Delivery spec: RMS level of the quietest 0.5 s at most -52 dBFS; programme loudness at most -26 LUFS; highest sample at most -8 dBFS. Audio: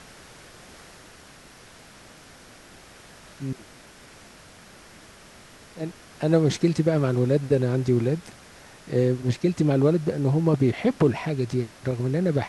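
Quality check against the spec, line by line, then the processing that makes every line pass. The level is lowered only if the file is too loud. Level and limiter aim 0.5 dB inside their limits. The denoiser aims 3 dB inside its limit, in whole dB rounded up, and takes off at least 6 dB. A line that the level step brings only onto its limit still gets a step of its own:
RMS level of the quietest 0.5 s -49 dBFS: fail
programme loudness -24.0 LUFS: fail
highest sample -7.0 dBFS: fail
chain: noise reduction 6 dB, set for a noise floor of -49 dBFS; trim -2.5 dB

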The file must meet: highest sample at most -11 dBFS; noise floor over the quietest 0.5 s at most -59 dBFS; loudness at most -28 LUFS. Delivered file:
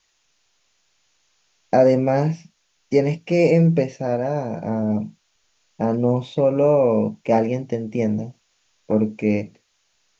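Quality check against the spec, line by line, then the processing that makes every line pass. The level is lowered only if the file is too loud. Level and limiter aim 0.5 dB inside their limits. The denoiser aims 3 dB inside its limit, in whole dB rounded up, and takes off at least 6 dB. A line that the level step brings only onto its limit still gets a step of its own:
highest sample -4.5 dBFS: fail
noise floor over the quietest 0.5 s -67 dBFS: pass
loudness -20.5 LUFS: fail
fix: trim -8 dB

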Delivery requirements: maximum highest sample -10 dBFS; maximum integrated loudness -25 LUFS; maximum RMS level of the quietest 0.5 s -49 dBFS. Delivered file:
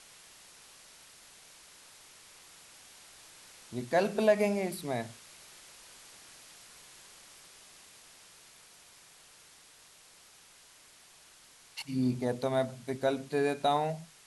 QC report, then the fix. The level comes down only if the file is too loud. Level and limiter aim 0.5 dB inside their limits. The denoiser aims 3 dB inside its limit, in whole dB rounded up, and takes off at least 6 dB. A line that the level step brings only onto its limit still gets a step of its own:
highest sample -13.5 dBFS: pass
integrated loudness -31.5 LUFS: pass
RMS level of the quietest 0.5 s -58 dBFS: pass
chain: none needed

